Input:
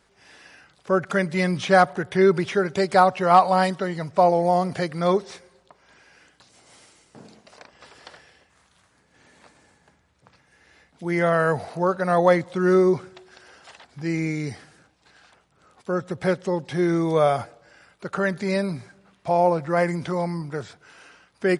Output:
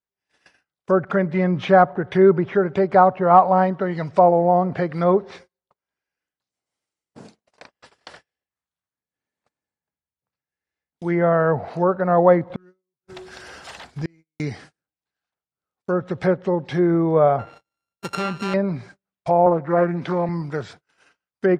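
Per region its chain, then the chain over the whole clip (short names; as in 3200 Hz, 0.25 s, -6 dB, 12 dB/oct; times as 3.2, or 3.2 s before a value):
12.5–14.4 G.711 law mismatch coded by mu + low shelf 120 Hz +5.5 dB + flipped gate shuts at -18 dBFS, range -36 dB
17.39–18.54 sample sorter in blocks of 32 samples + compressor 2:1, threshold -26 dBFS
19.46–20.29 HPF 150 Hz + high shelf 8700 Hz +3 dB + Doppler distortion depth 0.19 ms
whole clip: treble ducked by the level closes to 1200 Hz, closed at -19.5 dBFS; gate -46 dBFS, range -37 dB; gain +3.5 dB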